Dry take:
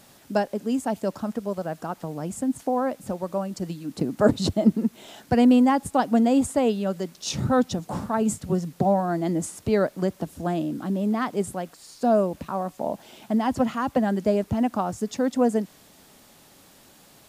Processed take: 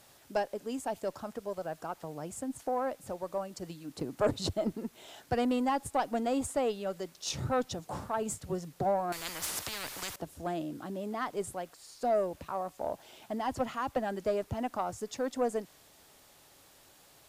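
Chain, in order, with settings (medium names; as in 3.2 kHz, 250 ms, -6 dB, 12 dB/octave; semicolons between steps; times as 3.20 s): peaking EQ 210 Hz -10.5 dB 0.89 oct; valve stage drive 13 dB, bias 0.25; 9.12–10.16 s: spectrum-flattening compressor 10:1; trim -5 dB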